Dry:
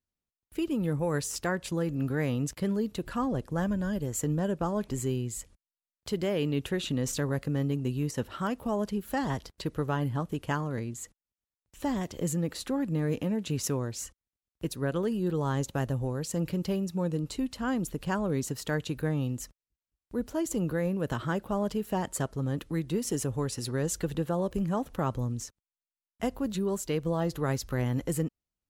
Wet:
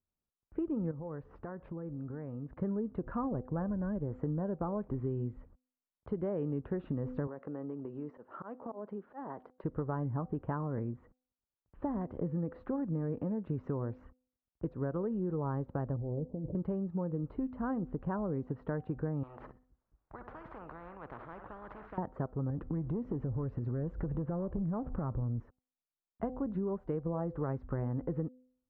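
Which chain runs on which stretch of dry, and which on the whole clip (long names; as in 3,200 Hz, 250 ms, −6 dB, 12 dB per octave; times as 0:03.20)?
0:00.91–0:02.56: parametric band 8,800 Hz −14.5 dB 0.99 octaves + downward compressor, threshold −38 dBFS
0:07.27–0:09.64: high-pass filter 320 Hz + volume swells 212 ms + downward compressor 5 to 1, threshold −36 dBFS
0:15.96–0:16.55: Butterworth low-pass 700 Hz + compressor whose output falls as the input rises −35 dBFS
0:19.23–0:21.98: repeating echo 62 ms, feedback 32%, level −19 dB + every bin compressed towards the loudest bin 10 to 1
0:22.50–0:25.40: low-shelf EQ 230 Hz +8.5 dB + leveller curve on the samples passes 1 + downward compressor 3 to 1, threshold −32 dBFS
whole clip: low-pass filter 1,300 Hz 24 dB per octave; hum removal 253.6 Hz, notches 3; downward compressor, threshold −31 dBFS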